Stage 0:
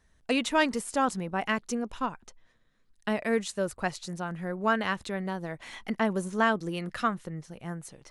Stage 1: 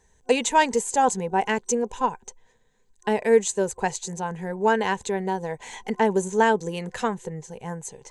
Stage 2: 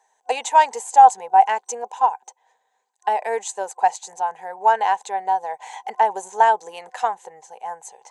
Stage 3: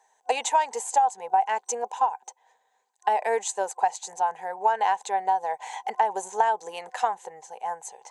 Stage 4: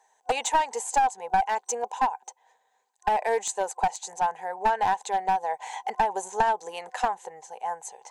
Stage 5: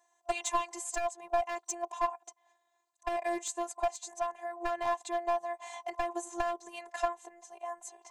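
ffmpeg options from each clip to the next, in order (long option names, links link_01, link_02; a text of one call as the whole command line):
ffmpeg -i in.wav -af "superequalizer=6b=0.631:7b=2.82:9b=2.51:10b=0.447:15b=3.55,volume=2.5dB" out.wav
ffmpeg -i in.wav -af "highpass=frequency=770:width_type=q:width=5.9,volume=-3dB" out.wav
ffmpeg -i in.wav -af "acompressor=threshold=-18dB:ratio=10" out.wav
ffmpeg -i in.wav -af "aeval=exprs='clip(val(0),-1,0.1)':channel_layout=same" out.wav
ffmpeg -i in.wav -af "afftfilt=real='hypot(re,im)*cos(PI*b)':imag='0':win_size=512:overlap=0.75,volume=-2.5dB" out.wav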